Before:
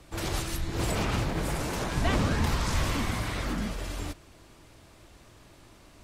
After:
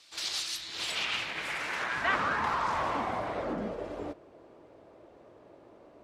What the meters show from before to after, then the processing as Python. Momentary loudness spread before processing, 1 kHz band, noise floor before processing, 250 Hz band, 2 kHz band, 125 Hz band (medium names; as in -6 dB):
9 LU, +3.0 dB, -55 dBFS, -8.5 dB, +3.0 dB, -17.5 dB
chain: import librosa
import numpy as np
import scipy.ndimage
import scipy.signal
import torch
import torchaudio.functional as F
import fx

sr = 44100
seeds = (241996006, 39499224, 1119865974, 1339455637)

y = fx.filter_sweep_bandpass(x, sr, from_hz=4400.0, to_hz=510.0, start_s=0.54, end_s=3.64, q=1.9)
y = F.gain(torch.from_numpy(y), 8.0).numpy()